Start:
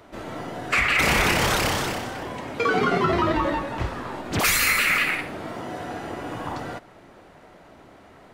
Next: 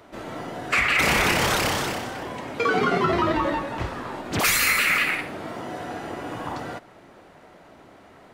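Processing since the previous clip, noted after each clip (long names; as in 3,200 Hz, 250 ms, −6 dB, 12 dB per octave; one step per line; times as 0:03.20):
low-shelf EQ 69 Hz −7 dB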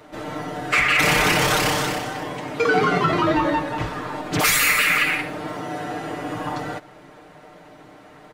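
comb filter 6.6 ms, depth 69%
in parallel at −11.5 dB: soft clipping −21.5 dBFS, distortion −9 dB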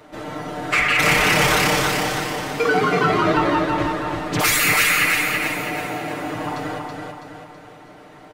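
repeating echo 327 ms, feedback 46%, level −4 dB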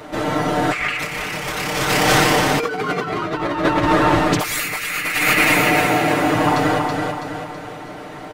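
compressor whose output falls as the input rises −23 dBFS, ratio −0.5
level +6 dB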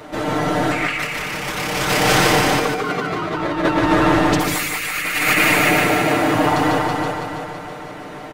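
repeating echo 148 ms, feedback 28%, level −4.5 dB
level −1 dB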